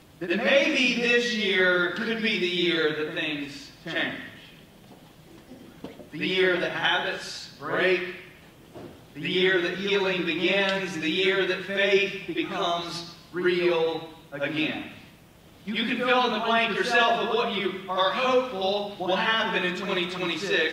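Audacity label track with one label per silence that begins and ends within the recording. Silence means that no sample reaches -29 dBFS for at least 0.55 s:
4.200000	5.840000	silence
8.110000	9.200000	silence
14.860000	15.680000	silence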